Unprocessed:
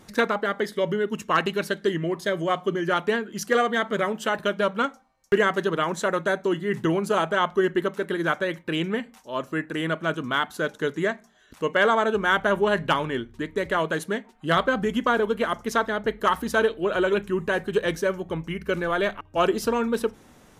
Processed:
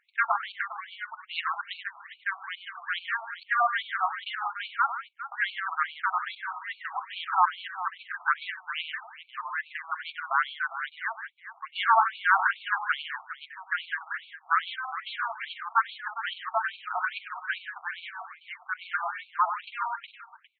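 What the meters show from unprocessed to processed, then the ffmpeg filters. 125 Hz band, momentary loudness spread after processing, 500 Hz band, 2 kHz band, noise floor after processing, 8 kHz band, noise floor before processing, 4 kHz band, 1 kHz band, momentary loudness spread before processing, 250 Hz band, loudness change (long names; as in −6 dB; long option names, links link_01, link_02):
below −40 dB, 13 LU, −22.0 dB, −2.0 dB, −57 dBFS, below −40 dB, −54 dBFS, −5.0 dB, −1.0 dB, 7 LU, below −40 dB, −5.0 dB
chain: -filter_complex "[0:a]lowshelf=frequency=230:gain=9.5,adynamicsmooth=sensitivity=5.5:basefreq=1200,equalizer=frequency=890:width=1.8:gain=4,asplit=2[link_01][link_02];[link_02]aecho=0:1:98|156|406:0.335|0.266|0.224[link_03];[link_01][link_03]amix=inputs=2:normalize=0,afftfilt=real='re*between(b*sr/1024,950*pow(3200/950,0.5+0.5*sin(2*PI*2.4*pts/sr))/1.41,950*pow(3200/950,0.5+0.5*sin(2*PI*2.4*pts/sr))*1.41)':imag='im*between(b*sr/1024,950*pow(3200/950,0.5+0.5*sin(2*PI*2.4*pts/sr))/1.41,950*pow(3200/950,0.5+0.5*sin(2*PI*2.4*pts/sr))*1.41)':win_size=1024:overlap=0.75"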